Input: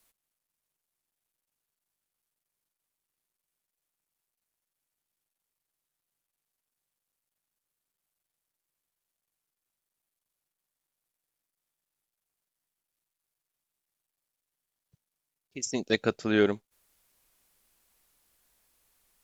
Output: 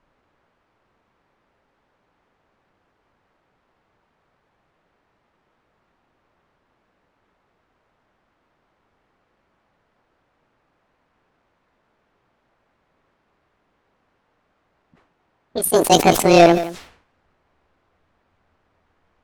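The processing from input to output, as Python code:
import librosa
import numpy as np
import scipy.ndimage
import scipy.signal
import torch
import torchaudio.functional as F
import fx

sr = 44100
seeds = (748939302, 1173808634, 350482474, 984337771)

p1 = fx.pitch_glide(x, sr, semitones=10.5, runs='starting unshifted')
p2 = fx.low_shelf(p1, sr, hz=360.0, db=9.5)
p3 = fx.leveller(p2, sr, passes=2)
p4 = fx.quant_dither(p3, sr, seeds[0], bits=8, dither='triangular')
p5 = p3 + F.gain(torch.from_numpy(p4), -12.0).numpy()
p6 = fx.env_lowpass(p5, sr, base_hz=1200.0, full_db=-21.0)
p7 = p6 + fx.echo_single(p6, sr, ms=173, db=-23.5, dry=0)
p8 = fx.sustainer(p7, sr, db_per_s=99.0)
y = F.gain(torch.from_numpy(p8), 4.5).numpy()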